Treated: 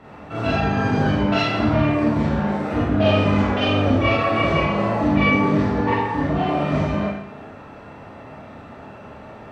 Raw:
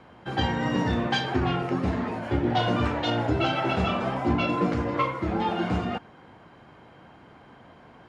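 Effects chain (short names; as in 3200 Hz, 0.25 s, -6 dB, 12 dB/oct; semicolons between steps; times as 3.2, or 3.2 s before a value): in parallel at +3 dB: compressor 10:1, threshold -38 dBFS, peak gain reduction 19 dB; on the sum: added harmonics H 3 -23 dB, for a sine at -9.5 dBFS; varispeed -15%; Schroeder reverb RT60 0.78 s, combs from 27 ms, DRR -7.5 dB; gain -2 dB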